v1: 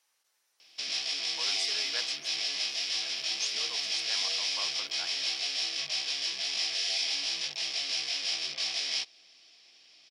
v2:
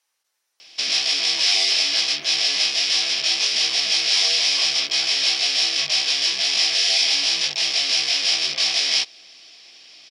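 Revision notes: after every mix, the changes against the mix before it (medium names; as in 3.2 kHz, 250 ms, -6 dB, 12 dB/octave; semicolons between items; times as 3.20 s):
background +12.0 dB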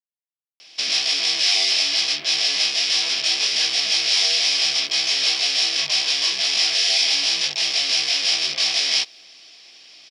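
speech: entry +1.65 s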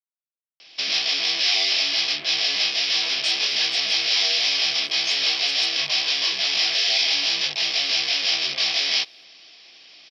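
background: add low-pass 5 kHz 24 dB/octave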